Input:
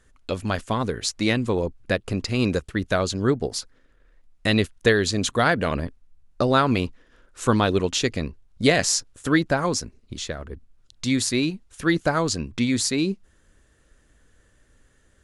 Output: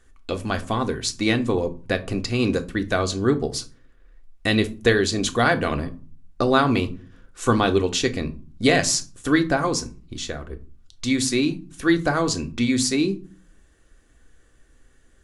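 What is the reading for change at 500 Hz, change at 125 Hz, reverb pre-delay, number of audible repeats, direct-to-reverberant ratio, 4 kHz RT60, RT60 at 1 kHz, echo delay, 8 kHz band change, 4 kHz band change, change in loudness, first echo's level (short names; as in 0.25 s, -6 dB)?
+1.0 dB, -0.5 dB, 3 ms, none, 6.0 dB, 0.25 s, 0.40 s, none, +0.5 dB, +0.5 dB, +1.0 dB, none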